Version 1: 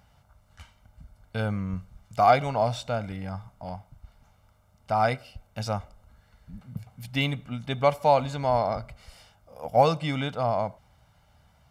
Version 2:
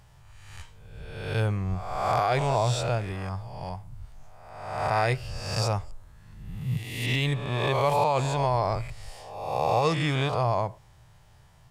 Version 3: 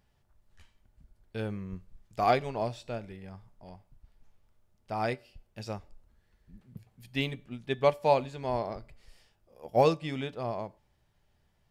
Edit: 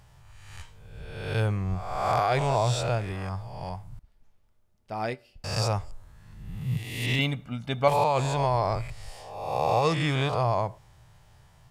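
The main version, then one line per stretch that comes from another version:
2
3.99–5.44 from 3
7.19–7.88 from 1

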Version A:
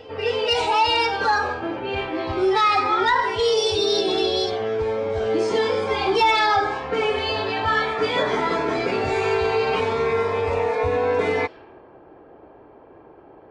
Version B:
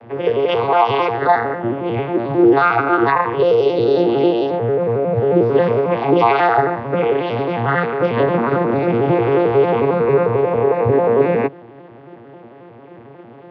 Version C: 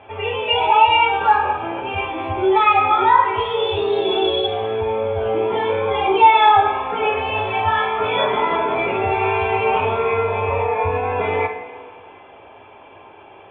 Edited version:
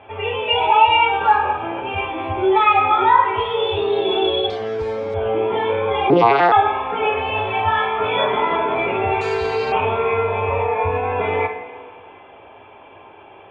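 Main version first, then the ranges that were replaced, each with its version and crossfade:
C
4.5–5.14 from A
6.1–6.52 from B
9.21–9.72 from A

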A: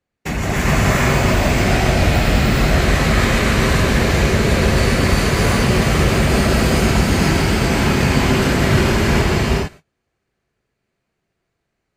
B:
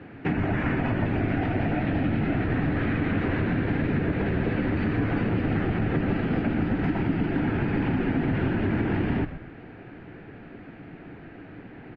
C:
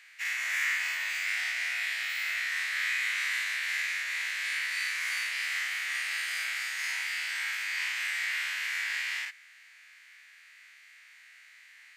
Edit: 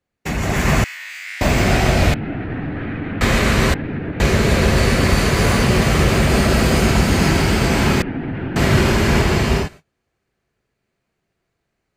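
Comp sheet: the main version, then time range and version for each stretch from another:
A
0.84–1.41 from C
2.14–3.21 from B
3.74–4.2 from B
8.02–8.56 from B

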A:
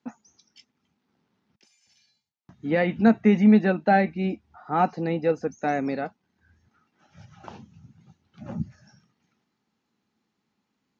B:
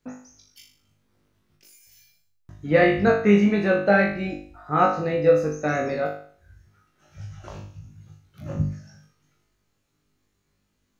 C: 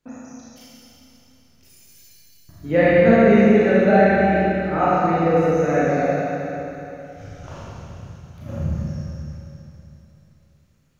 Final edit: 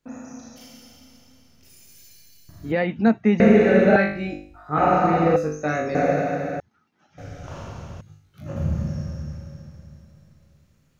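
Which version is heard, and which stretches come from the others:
C
2.72–3.4 from A
3.96–4.78 from B
5.36–5.95 from B
6.6–7.18 from A
8.01–8.56 from B

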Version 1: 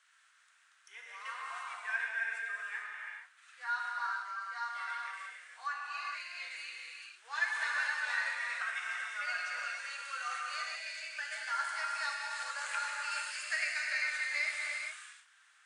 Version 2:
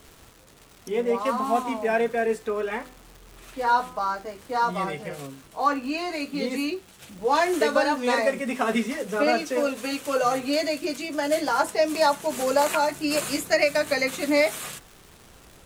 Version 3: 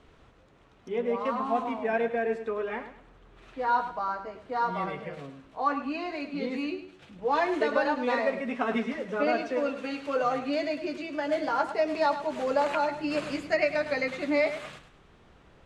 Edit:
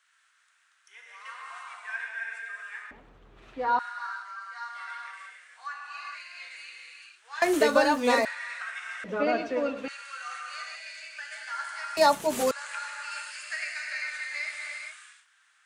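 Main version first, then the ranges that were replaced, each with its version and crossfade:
1
2.91–3.79 from 3
7.42–8.25 from 2
9.04–9.88 from 3
11.97–12.51 from 2

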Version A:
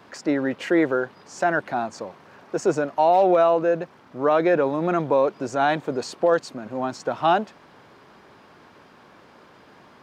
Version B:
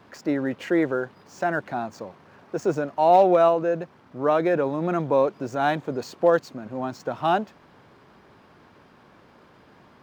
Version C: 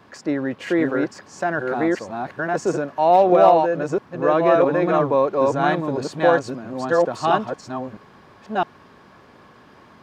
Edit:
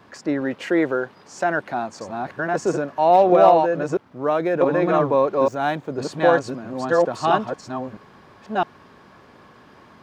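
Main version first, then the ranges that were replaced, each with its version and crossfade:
C
0.41–2.01 from A
3.97–4.61 from B
5.48–5.98 from B

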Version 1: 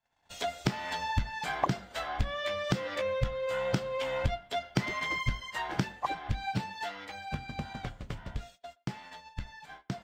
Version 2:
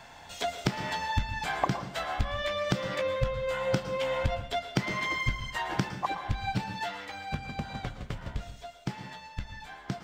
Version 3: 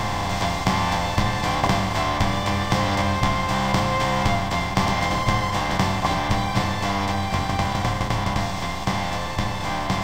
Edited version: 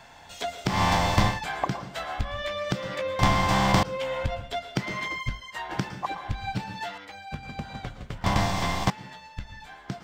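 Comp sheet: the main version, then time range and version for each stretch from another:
2
0.74–1.33 from 3, crossfade 0.16 s
3.19–3.83 from 3
5.08–5.71 from 1
6.98–7.43 from 1
8.24–8.9 from 3

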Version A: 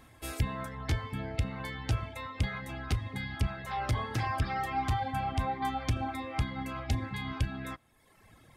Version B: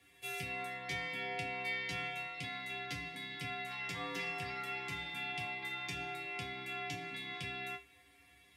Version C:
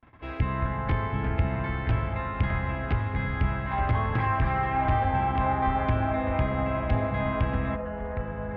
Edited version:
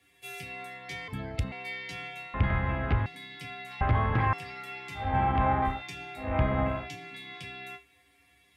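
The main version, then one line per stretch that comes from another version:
B
1.08–1.52 from A
2.34–3.06 from C
3.81–4.33 from C
5.06–5.71 from C, crossfade 0.24 s
6.27–6.77 from C, crossfade 0.24 s

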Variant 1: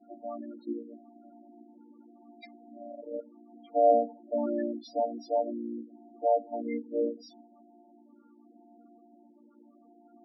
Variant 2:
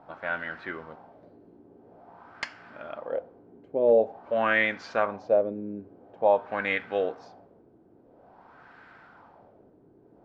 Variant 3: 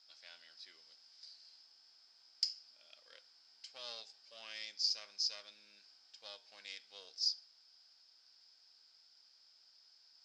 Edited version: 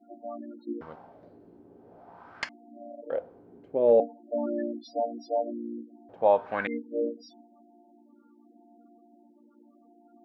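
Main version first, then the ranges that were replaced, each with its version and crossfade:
1
0.81–2.49 from 2
3.1–4 from 2
6.09–6.67 from 2
not used: 3

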